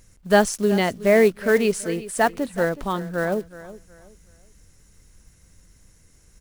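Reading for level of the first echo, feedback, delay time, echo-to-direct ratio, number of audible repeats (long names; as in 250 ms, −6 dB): −16.5 dB, 30%, 371 ms, −16.0 dB, 2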